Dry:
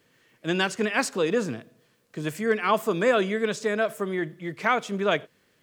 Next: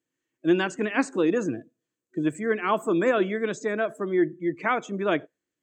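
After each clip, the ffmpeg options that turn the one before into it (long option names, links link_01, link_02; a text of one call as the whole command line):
ffmpeg -i in.wav -filter_complex "[0:a]afftdn=noise_reduction=22:noise_floor=-40,acrossover=split=3000[link_01][link_02];[link_02]acompressor=threshold=-45dB:ratio=4:attack=1:release=60[link_03];[link_01][link_03]amix=inputs=2:normalize=0,superequalizer=6b=3.16:15b=2.82,volume=-1.5dB" out.wav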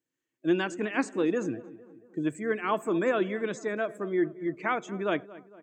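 ffmpeg -i in.wav -filter_complex "[0:a]asplit=2[link_01][link_02];[link_02]adelay=228,lowpass=frequency=1800:poles=1,volume=-18dB,asplit=2[link_03][link_04];[link_04]adelay=228,lowpass=frequency=1800:poles=1,volume=0.55,asplit=2[link_05][link_06];[link_06]adelay=228,lowpass=frequency=1800:poles=1,volume=0.55,asplit=2[link_07][link_08];[link_08]adelay=228,lowpass=frequency=1800:poles=1,volume=0.55,asplit=2[link_09][link_10];[link_10]adelay=228,lowpass=frequency=1800:poles=1,volume=0.55[link_11];[link_01][link_03][link_05][link_07][link_09][link_11]amix=inputs=6:normalize=0,volume=-4dB" out.wav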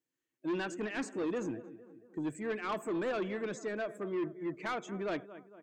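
ffmpeg -i in.wav -af "asoftclip=type=tanh:threshold=-26dB,volume=-3.5dB" out.wav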